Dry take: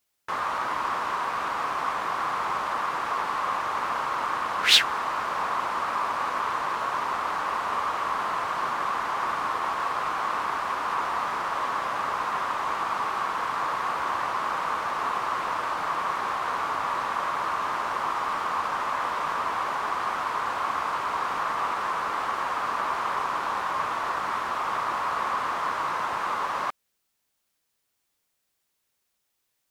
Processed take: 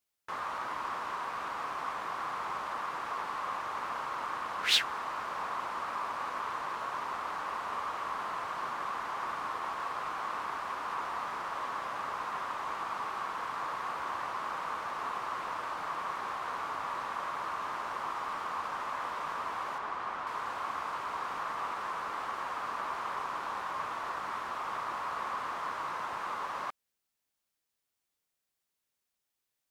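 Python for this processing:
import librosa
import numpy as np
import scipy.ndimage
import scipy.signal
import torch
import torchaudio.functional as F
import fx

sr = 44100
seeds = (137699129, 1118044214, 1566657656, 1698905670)

y = fx.lowpass(x, sr, hz=3500.0, slope=6, at=(19.78, 20.27))
y = y * librosa.db_to_amplitude(-8.5)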